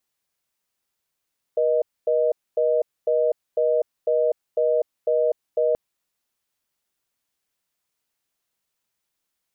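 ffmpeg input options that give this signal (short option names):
-f lavfi -i "aevalsrc='0.1*(sin(2*PI*480*t)+sin(2*PI*620*t))*clip(min(mod(t,0.5),0.25-mod(t,0.5))/0.005,0,1)':d=4.18:s=44100"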